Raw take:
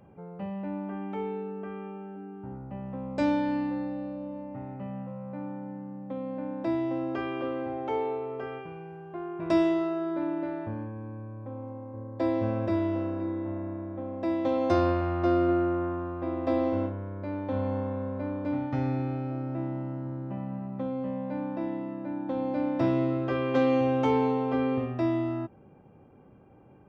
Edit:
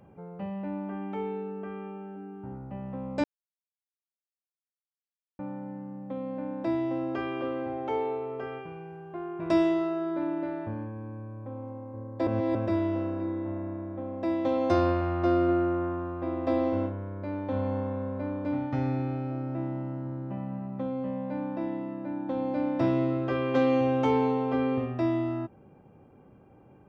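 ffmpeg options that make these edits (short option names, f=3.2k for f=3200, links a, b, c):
-filter_complex "[0:a]asplit=5[a][b][c][d][e];[a]atrim=end=3.24,asetpts=PTS-STARTPTS,afade=t=out:st=3.236:d=0.004:c=hsin[f];[b]atrim=start=3.24:end=5.39,asetpts=PTS-STARTPTS,volume=0[g];[c]atrim=start=5.39:end=12.272,asetpts=PTS-STARTPTS,afade=t=in:d=0.004:c=hsin[h];[d]atrim=start=12.268:end=12.552,asetpts=PTS-STARTPTS,areverse[i];[e]atrim=start=12.548[j];[f][g][h]concat=n=3:v=0:a=1[k];[k][i]acrossfade=d=0.004:c1=hsin:c2=hsin[l];[l][j]acrossfade=d=0.004:c1=hsin:c2=hsin"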